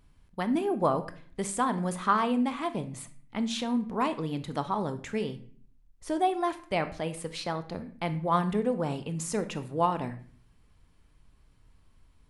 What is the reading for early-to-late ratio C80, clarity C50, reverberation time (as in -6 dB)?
18.0 dB, 13.5 dB, 0.50 s